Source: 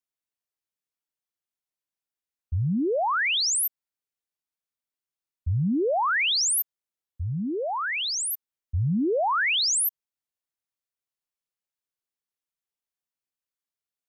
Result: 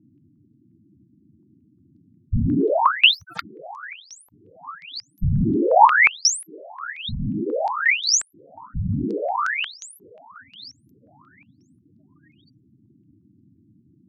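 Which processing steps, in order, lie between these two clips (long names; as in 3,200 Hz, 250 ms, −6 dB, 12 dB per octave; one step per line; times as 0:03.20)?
source passing by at 0:04.00, 27 m/s, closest 15 metres
feedback echo with a high-pass in the loop 913 ms, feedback 38%, high-pass 380 Hz, level −23 dB
wrap-around overflow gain 27 dB
random phases in short frames
noise in a band 83–320 Hz −75 dBFS
gate on every frequency bin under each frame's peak −10 dB strong
boost into a limiter +31 dB
low-pass on a step sequencer 5.6 Hz 930–6,100 Hz
level −12.5 dB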